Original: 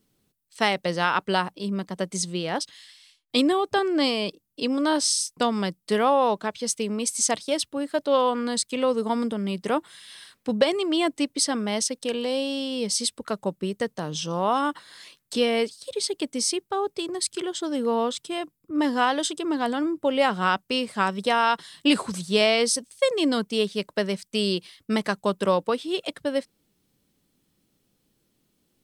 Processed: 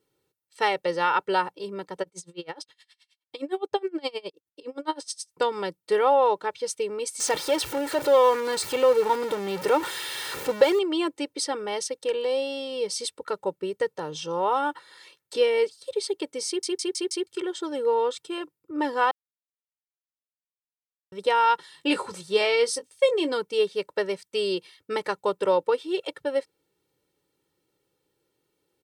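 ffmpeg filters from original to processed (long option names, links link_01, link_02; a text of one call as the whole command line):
ffmpeg -i in.wav -filter_complex "[0:a]asplit=3[link_01][link_02][link_03];[link_01]afade=type=out:start_time=2.02:duration=0.02[link_04];[link_02]aeval=exprs='val(0)*pow(10,-29*(0.5-0.5*cos(2*PI*9.6*n/s))/20)':channel_layout=same,afade=type=in:start_time=2.02:duration=0.02,afade=type=out:start_time=5.32:duration=0.02[link_05];[link_03]afade=type=in:start_time=5.32:duration=0.02[link_06];[link_04][link_05][link_06]amix=inputs=3:normalize=0,asettb=1/sr,asplit=3[link_07][link_08][link_09];[link_07]atrim=end=7.204[link_10];[link_08]atrim=start=7.2:end=10.79,asetpts=PTS-STARTPTS,afade=type=in:duration=0.004:curve=qsin,afade=type=out:start_time=3.586:duration=0.004:curve=qsin,aeval=exprs='val(0)+0.5*0.0631*sgn(val(0))':channel_layout=same[link_11];[link_09]atrim=start=10.786[link_12];[link_10][link_11]acrossfade=duration=0.004:curve1=hsin:curve2=qsin[link_13];[link_13][link_12]acrossfade=duration=0.004:curve1=qsin:curve2=hsin,asettb=1/sr,asplit=3[link_14][link_15][link_16];[link_14]atrim=end=21.714[link_17];[link_15]atrim=start=21.71:end=23.33,asetpts=PTS-STARTPTS,afade=type=in:duration=0.004:curve=qsin,afade=type=out:start_time=1.616:duration=0.004:curve=qsin,asplit=2[link_18][link_19];[link_19]adelay=20,volume=-11dB[link_20];[link_18][link_20]amix=inputs=2:normalize=0,atrim=end_sample=71442[link_21];[link_16]atrim=start=23.326[link_22];[link_17][link_21]acrossfade=duration=0.004:curve1=hsin:curve2=qsin[link_23];[link_23][link_22]acrossfade=duration=0.004:curve1=qsin:curve2=hsin,asplit=8[link_24][link_25][link_26][link_27][link_28][link_29][link_30][link_31];[link_24]atrim=end=16.632[link_32];[link_25]atrim=start=16.468:end=16.632[link_33];[link_26]atrim=start=16.468:end=16.632[link_34];[link_27]atrim=start=16.468:end=16.632[link_35];[link_28]atrim=start=16.468:end=16.632[link_36];[link_29]atrim=start=17.268:end=19.11,asetpts=PTS-STARTPTS,afade=type=out:start_time=1.838:duration=0.004:curve=hsin[link_37];[link_30]atrim=start=19.11:end=21.12,asetpts=PTS-STARTPTS,volume=0[link_38];[link_31]atrim=start=21.12,asetpts=PTS-STARTPTS,afade=type=in:duration=0.004:curve=hsin[link_39];[link_32][link_33]acrossfade=duration=0.004:curve1=hsin:curve2=hsin[link_40];[link_40][link_34]acrossfade=duration=0.004:curve1=hsin:curve2=hsin[link_41];[link_41][link_35]acrossfade=duration=0.004:curve1=hsin:curve2=hsin[link_42];[link_42][link_36]acrossfade=duration=0.004:curve1=hsin:curve2=hsin[link_43];[link_37][link_38][link_39]concat=n=3:v=0:a=1[link_44];[link_43][link_44]acrossfade=duration=0.004:curve1=hsin:curve2=hsin,highpass=frequency=350:poles=1,highshelf=frequency=2400:gain=-9.5,aecho=1:1:2.2:0.8" out.wav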